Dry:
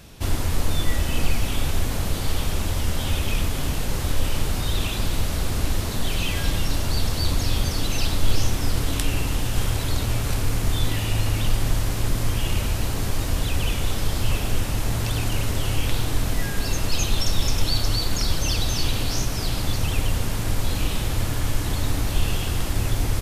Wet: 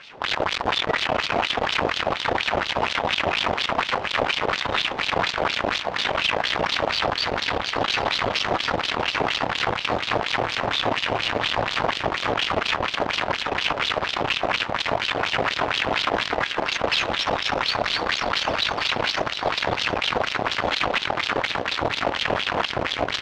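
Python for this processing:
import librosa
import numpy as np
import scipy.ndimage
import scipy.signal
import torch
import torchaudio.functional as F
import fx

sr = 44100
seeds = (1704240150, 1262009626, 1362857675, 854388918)

p1 = fx.hum_notches(x, sr, base_hz=60, count=7)
p2 = fx.over_compress(p1, sr, threshold_db=-20.0, ratio=-0.5)
p3 = p1 + F.gain(torch.from_numpy(p2), 0.0).numpy()
p4 = fx.quant_companded(p3, sr, bits=2)
p5 = fx.wah_lfo(p4, sr, hz=4.2, low_hz=600.0, high_hz=3800.0, q=2.1)
p6 = np.clip(10.0 ** (12.0 / 20.0) * p5, -1.0, 1.0) / 10.0 ** (12.0 / 20.0)
p7 = fx.air_absorb(p6, sr, metres=170.0)
y = p7 + fx.echo_feedback(p7, sr, ms=725, feedback_pct=58, wet_db=-12.0, dry=0)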